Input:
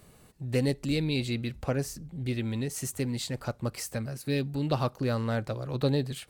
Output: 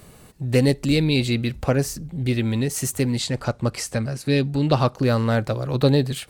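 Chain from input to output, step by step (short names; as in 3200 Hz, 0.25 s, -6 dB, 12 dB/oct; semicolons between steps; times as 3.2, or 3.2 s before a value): 3.18–4.98 LPF 9100 Hz 12 dB/oct; gain +9 dB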